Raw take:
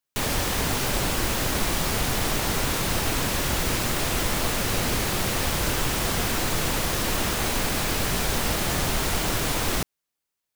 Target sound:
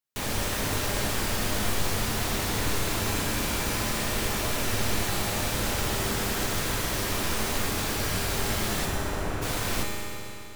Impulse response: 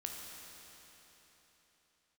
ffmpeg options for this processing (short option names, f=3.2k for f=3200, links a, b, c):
-filter_complex "[0:a]asplit=3[a][b][c];[a]afade=t=out:st=8.85:d=0.02[d];[b]lowpass=1.6k,afade=t=in:st=8.85:d=0.02,afade=t=out:st=9.41:d=0.02[e];[c]afade=t=in:st=9.41:d=0.02[f];[d][e][f]amix=inputs=3:normalize=0[g];[1:a]atrim=start_sample=2205,asetrate=57330,aresample=44100[h];[g][h]afir=irnorm=-1:irlink=0"